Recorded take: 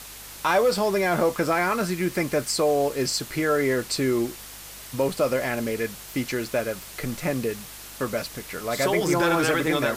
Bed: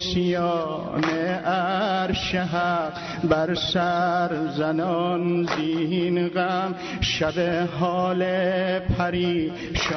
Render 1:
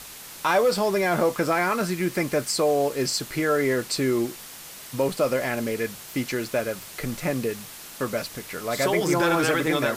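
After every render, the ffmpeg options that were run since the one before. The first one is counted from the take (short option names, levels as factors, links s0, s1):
-af "bandreject=f=50:t=h:w=4,bandreject=f=100:t=h:w=4"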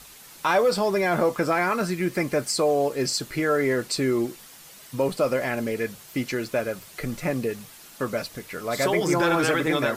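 -af "afftdn=nr=7:nf=-42"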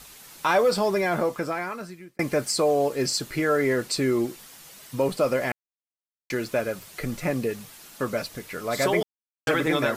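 -filter_complex "[0:a]asplit=6[s0][s1][s2][s3][s4][s5];[s0]atrim=end=2.19,asetpts=PTS-STARTPTS,afade=t=out:st=0.86:d=1.33[s6];[s1]atrim=start=2.19:end=5.52,asetpts=PTS-STARTPTS,afade=t=in:d=0.004:c=hsin,afade=t=out:st=3.326:d=0.004:c=hsin[s7];[s2]atrim=start=5.52:end=6.3,asetpts=PTS-STARTPTS,volume=0[s8];[s3]atrim=start=6.3:end=9.03,asetpts=PTS-STARTPTS,afade=t=in:d=0.004:c=hsin,afade=t=out:st=2.726:d=0.004:c=hsin[s9];[s4]atrim=start=9.03:end=9.47,asetpts=PTS-STARTPTS,volume=0[s10];[s5]atrim=start=9.47,asetpts=PTS-STARTPTS,afade=t=in:d=0.004:c=hsin[s11];[s6][s7][s8][s9][s10][s11]concat=n=6:v=0:a=1"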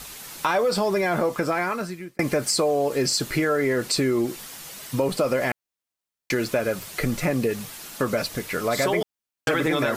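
-filter_complex "[0:a]asplit=2[s0][s1];[s1]alimiter=limit=0.1:level=0:latency=1,volume=1.33[s2];[s0][s2]amix=inputs=2:normalize=0,acompressor=threshold=0.1:ratio=3"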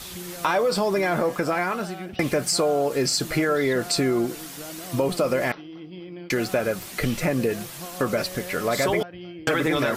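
-filter_complex "[1:a]volume=0.158[s0];[0:a][s0]amix=inputs=2:normalize=0"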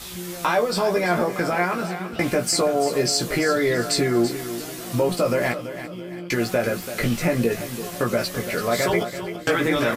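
-filter_complex "[0:a]asplit=2[s0][s1];[s1]adelay=17,volume=0.631[s2];[s0][s2]amix=inputs=2:normalize=0,asplit=2[s3][s4];[s4]aecho=0:1:335|670|1005|1340:0.266|0.106|0.0426|0.017[s5];[s3][s5]amix=inputs=2:normalize=0"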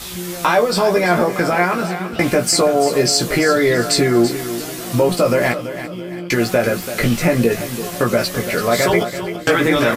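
-af "volume=2"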